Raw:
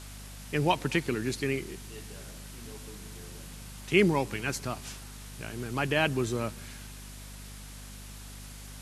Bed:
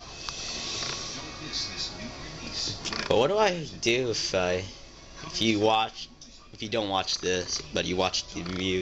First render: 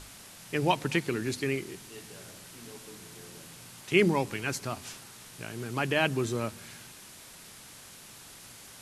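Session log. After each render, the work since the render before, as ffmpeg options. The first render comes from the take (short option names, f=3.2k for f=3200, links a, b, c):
-af "bandreject=f=50:t=h:w=6,bandreject=f=100:t=h:w=6,bandreject=f=150:t=h:w=6,bandreject=f=200:t=h:w=6,bandreject=f=250:t=h:w=6"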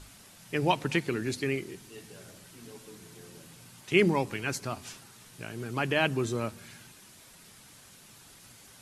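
-af "afftdn=nr=6:nf=-50"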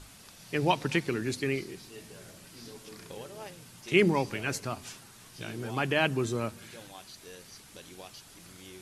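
-filter_complex "[1:a]volume=-21.5dB[a];[0:a][a]amix=inputs=2:normalize=0"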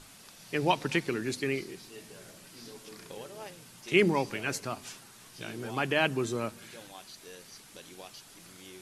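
-af "equalizer=f=61:w=0.8:g=-10.5"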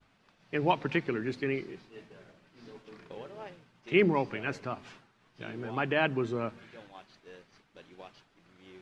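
-af "agate=range=-33dB:threshold=-45dB:ratio=3:detection=peak,lowpass=2.5k"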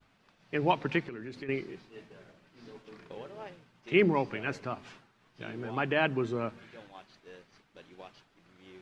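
-filter_complex "[0:a]asettb=1/sr,asplit=3[a][b][c];[a]atrim=end=1.024[d];[b]atrim=start=1.02:end=1.49,asetpts=PTS-STARTPTS,afade=t=in:d=0.004:c=qsin,afade=t=out:st=0.466:d=0.004:c=qsin,acompressor=threshold=-38dB:ratio=5:attack=3.2:release=140:knee=1:detection=peak[e];[c]atrim=start=1.486[f];[d][e]acrossfade=d=0.004:c1=hsin:c2=qsin[g];[g][f]acrossfade=d=0.004:c1=qsin:c2=hsin"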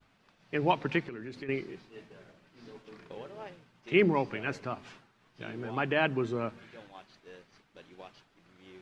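-af anull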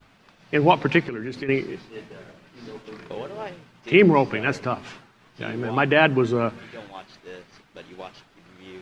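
-af "volume=10.5dB,alimiter=limit=-3dB:level=0:latency=1"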